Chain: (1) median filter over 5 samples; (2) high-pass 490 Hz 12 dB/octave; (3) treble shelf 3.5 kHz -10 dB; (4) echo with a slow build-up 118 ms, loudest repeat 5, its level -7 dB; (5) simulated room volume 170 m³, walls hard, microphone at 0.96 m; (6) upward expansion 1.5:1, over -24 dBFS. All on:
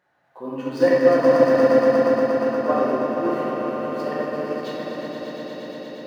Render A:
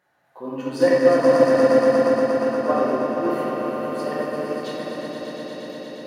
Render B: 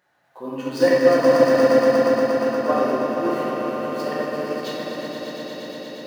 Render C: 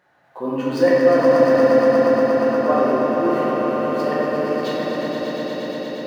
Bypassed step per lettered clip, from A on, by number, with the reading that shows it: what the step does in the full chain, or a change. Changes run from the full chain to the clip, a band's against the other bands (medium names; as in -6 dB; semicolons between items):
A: 1, 4 kHz band +2.0 dB; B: 3, 4 kHz band +5.5 dB; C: 6, crest factor change -2.5 dB